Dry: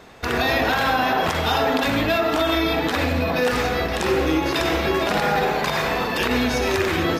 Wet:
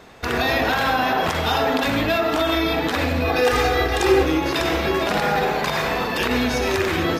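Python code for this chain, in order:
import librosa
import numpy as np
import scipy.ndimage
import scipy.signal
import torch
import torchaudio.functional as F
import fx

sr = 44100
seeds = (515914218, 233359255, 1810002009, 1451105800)

y = fx.comb(x, sr, ms=2.5, depth=0.93, at=(3.24, 4.23))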